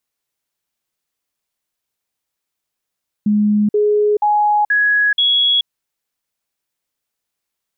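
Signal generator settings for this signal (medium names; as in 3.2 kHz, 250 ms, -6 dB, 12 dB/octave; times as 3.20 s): stepped sine 209 Hz up, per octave 1, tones 5, 0.43 s, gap 0.05 s -11 dBFS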